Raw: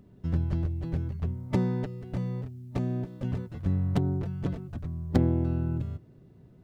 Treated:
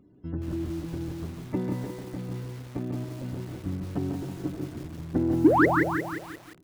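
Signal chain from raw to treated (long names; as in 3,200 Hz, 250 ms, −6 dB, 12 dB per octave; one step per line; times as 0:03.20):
variable-slope delta modulation 64 kbit/s
low-shelf EQ 110 Hz −6 dB
hum removal 202.5 Hz, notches 37
sound drawn into the spectrogram rise, 0:05.44–0:05.66, 260–2,200 Hz −17 dBFS
parametric band 310 Hz +13.5 dB 0.33 octaves
spectral peaks only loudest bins 64
in parallel at −3.5 dB: soft clipping −14 dBFS, distortion −9 dB
on the sum: slap from a distant wall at 25 metres, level −6 dB
feedback echo at a low word length 176 ms, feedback 55%, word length 6 bits, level −5 dB
level −8.5 dB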